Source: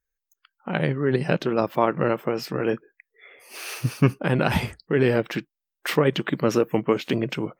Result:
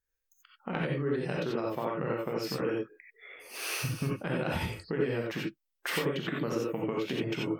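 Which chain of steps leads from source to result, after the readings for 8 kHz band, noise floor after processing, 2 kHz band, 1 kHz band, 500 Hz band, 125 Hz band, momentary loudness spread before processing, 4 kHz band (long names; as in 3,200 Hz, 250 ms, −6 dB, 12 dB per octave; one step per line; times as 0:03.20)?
−2.5 dB, −82 dBFS, −7.0 dB, −10.0 dB, −9.0 dB, −9.5 dB, 10 LU, −5.0 dB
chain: downward compressor 6 to 1, threshold −28 dBFS, peak gain reduction 15 dB
reverb whose tail is shaped and stops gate 110 ms rising, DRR −2.5 dB
level −4 dB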